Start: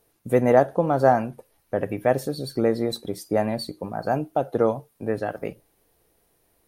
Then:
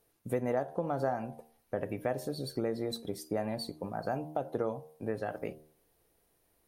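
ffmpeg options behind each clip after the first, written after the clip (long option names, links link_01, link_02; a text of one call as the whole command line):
ffmpeg -i in.wav -af "bandreject=frequency=77.18:width_type=h:width=4,bandreject=frequency=154.36:width_type=h:width=4,bandreject=frequency=231.54:width_type=h:width=4,bandreject=frequency=308.72:width_type=h:width=4,bandreject=frequency=385.9:width_type=h:width=4,bandreject=frequency=463.08:width_type=h:width=4,bandreject=frequency=540.26:width_type=h:width=4,bandreject=frequency=617.44:width_type=h:width=4,bandreject=frequency=694.62:width_type=h:width=4,bandreject=frequency=771.8:width_type=h:width=4,bandreject=frequency=848.98:width_type=h:width=4,bandreject=frequency=926.16:width_type=h:width=4,bandreject=frequency=1003.34:width_type=h:width=4,bandreject=frequency=1080.52:width_type=h:width=4,acompressor=threshold=-24dB:ratio=3,volume=-6dB" out.wav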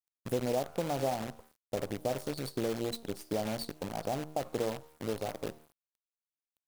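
ffmpeg -i in.wav -af "asuperstop=centerf=1800:order=4:qfactor=0.88,acrusher=bits=7:dc=4:mix=0:aa=0.000001" out.wav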